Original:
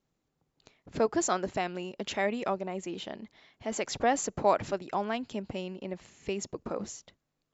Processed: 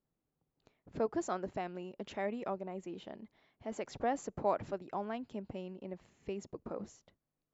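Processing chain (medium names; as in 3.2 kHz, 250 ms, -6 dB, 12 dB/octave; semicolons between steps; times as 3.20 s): treble shelf 2.1 kHz -11.5 dB; trim -6 dB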